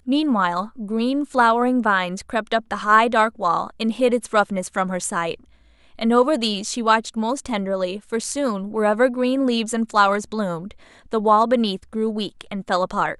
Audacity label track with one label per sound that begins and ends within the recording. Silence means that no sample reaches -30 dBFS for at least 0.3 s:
5.990000	10.710000	sound